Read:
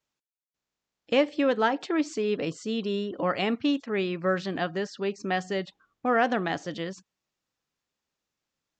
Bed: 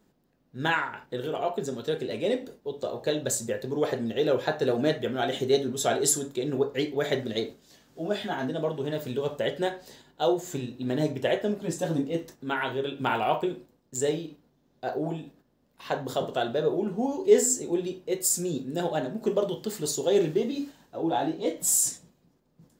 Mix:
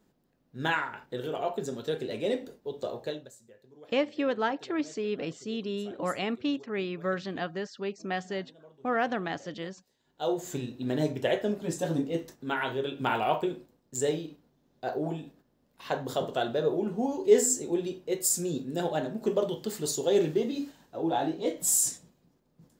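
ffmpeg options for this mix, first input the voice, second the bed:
-filter_complex "[0:a]adelay=2800,volume=-4.5dB[a];[1:a]volume=21.5dB,afade=t=out:st=2.91:d=0.39:silence=0.0707946,afade=t=in:st=9.99:d=0.46:silence=0.0630957[b];[a][b]amix=inputs=2:normalize=0"

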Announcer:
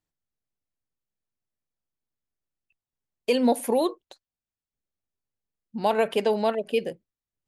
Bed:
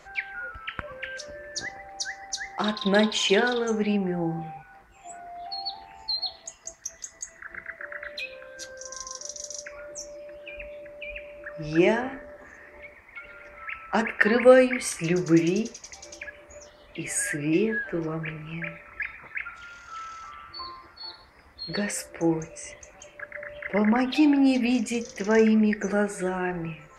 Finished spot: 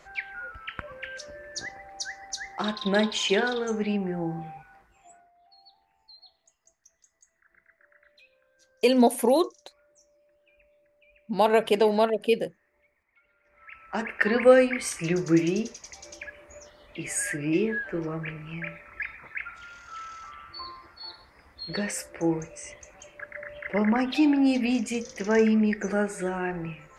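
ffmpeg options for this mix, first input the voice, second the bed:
-filter_complex "[0:a]adelay=5550,volume=2dB[a];[1:a]volume=19dB,afade=t=out:st=4.61:d=0.7:silence=0.0944061,afade=t=in:st=13.43:d=0.98:silence=0.0841395[b];[a][b]amix=inputs=2:normalize=0"

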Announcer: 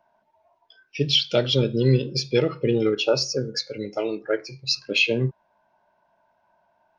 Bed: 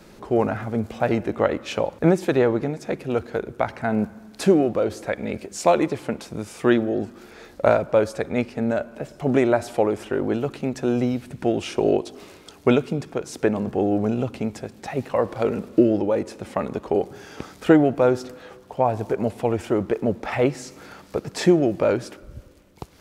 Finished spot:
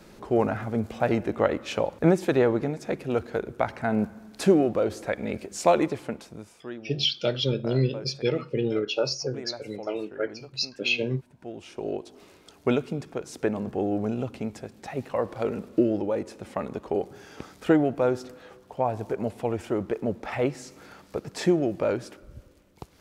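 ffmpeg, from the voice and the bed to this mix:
-filter_complex "[0:a]adelay=5900,volume=-5dB[a];[1:a]volume=12dB,afade=t=out:st=5.79:d=0.84:silence=0.133352,afade=t=in:st=11.36:d=1.47:silence=0.188365[b];[a][b]amix=inputs=2:normalize=0"

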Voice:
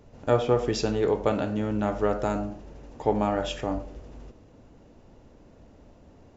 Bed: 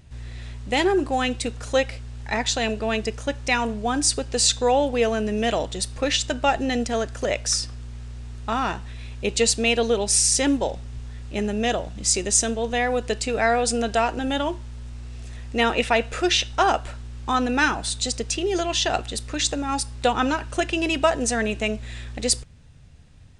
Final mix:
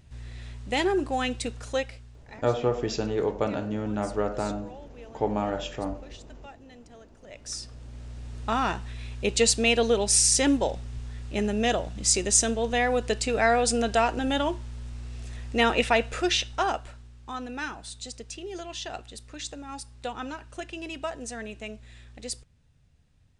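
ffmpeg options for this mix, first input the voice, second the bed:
-filter_complex "[0:a]adelay=2150,volume=-2.5dB[a];[1:a]volume=20.5dB,afade=t=out:st=1.51:d=0.9:silence=0.0794328,afade=t=in:st=7.26:d=1.17:silence=0.0562341,afade=t=out:st=15.82:d=1.35:silence=0.251189[b];[a][b]amix=inputs=2:normalize=0"

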